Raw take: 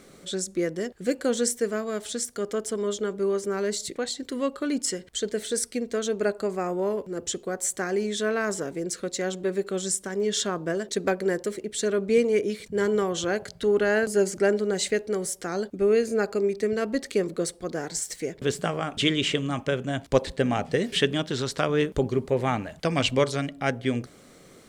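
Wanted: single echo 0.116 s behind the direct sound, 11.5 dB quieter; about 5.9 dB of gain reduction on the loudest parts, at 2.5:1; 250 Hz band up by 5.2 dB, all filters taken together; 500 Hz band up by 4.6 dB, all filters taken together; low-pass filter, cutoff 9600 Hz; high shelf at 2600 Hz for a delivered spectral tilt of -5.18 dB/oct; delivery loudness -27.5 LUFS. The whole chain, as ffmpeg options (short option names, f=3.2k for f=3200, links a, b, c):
-af "lowpass=9.6k,equalizer=f=250:t=o:g=5.5,equalizer=f=500:t=o:g=4,highshelf=f=2.6k:g=-4,acompressor=threshold=-20dB:ratio=2.5,aecho=1:1:116:0.266,volume=-2dB"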